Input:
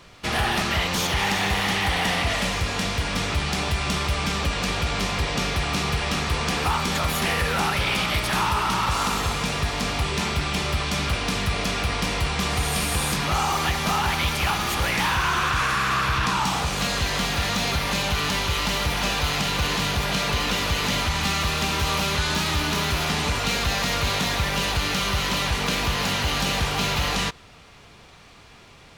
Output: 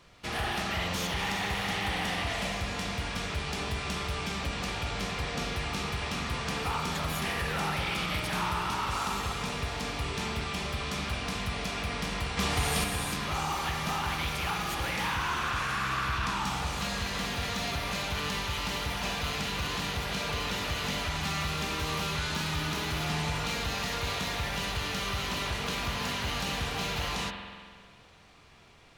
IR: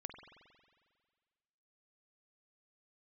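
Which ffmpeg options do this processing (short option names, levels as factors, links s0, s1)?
-filter_complex "[0:a]asettb=1/sr,asplit=3[s0][s1][s2];[s0]atrim=end=12.374[s3];[s1]atrim=start=12.37:end=12.84,asetpts=PTS-STARTPTS,afade=t=in:d=0.004:c=qsin,afade=t=out:st=0.466:d=0.004:c=qsin,acontrast=26[s4];[s2]atrim=start=12.836[s5];[s3][s4]acrossfade=d=0.004:c1=hsin:c2=qsin[s6];[s6][s5]acrossfade=d=0.004:c1=qsin:c2=hsin[s7];[1:a]atrim=start_sample=2205[s8];[s7][s8]afir=irnorm=-1:irlink=0,volume=0.596"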